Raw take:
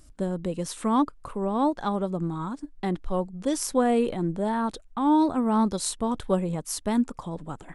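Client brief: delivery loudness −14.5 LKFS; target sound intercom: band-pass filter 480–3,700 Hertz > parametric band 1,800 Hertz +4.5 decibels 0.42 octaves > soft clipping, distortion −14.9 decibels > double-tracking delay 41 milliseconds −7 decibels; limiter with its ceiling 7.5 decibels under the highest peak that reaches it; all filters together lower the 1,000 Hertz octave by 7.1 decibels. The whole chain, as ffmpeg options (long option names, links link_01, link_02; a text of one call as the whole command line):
ffmpeg -i in.wav -filter_complex "[0:a]equalizer=frequency=1000:width_type=o:gain=-8.5,alimiter=limit=-20dB:level=0:latency=1,highpass=480,lowpass=3700,equalizer=frequency=1800:width_type=o:width=0.42:gain=4.5,asoftclip=threshold=-29.5dB,asplit=2[link_01][link_02];[link_02]adelay=41,volume=-7dB[link_03];[link_01][link_03]amix=inputs=2:normalize=0,volume=24dB" out.wav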